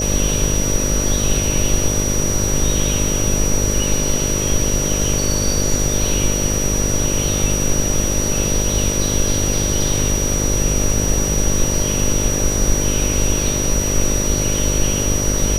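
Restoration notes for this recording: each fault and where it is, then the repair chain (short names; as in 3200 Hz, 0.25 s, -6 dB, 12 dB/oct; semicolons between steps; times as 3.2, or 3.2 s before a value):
buzz 50 Hz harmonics 12 -22 dBFS
tone 5800 Hz -21 dBFS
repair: de-hum 50 Hz, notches 12; notch 5800 Hz, Q 30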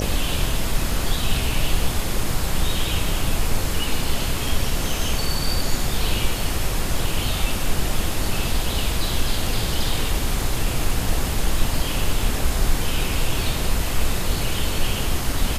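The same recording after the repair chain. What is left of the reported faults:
none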